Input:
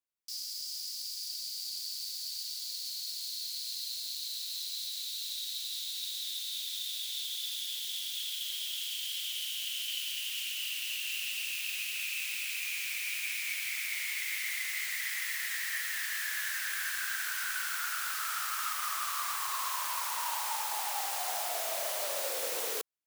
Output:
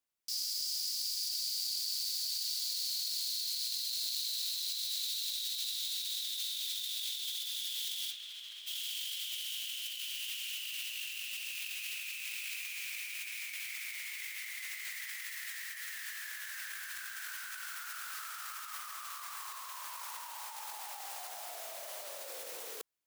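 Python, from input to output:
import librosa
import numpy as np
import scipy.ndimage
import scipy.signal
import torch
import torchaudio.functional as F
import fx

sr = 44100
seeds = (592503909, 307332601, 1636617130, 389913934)

y = fx.over_compress(x, sr, threshold_db=-39.0, ratio=-0.5)
y = fx.lowpass(y, sr, hz=fx.line((8.1, 2300.0), (8.66, 1400.0)), slope=6, at=(8.1, 8.66), fade=0.02)
y = fx.peak_eq(y, sr, hz=230.0, db=-11.0, octaves=2.2, at=(15.12, 16.16))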